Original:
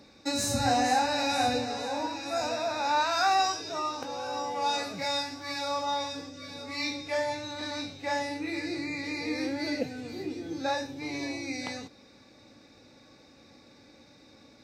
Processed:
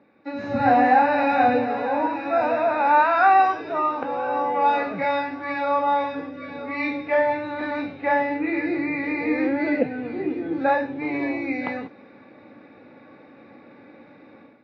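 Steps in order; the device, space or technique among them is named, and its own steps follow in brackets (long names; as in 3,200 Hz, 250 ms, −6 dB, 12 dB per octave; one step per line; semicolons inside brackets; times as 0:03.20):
high-pass filter 170 Hz 12 dB per octave
action camera in a waterproof case (low-pass filter 2,300 Hz 24 dB per octave; automatic gain control gain up to 12 dB; level −2 dB; AAC 48 kbit/s 16,000 Hz)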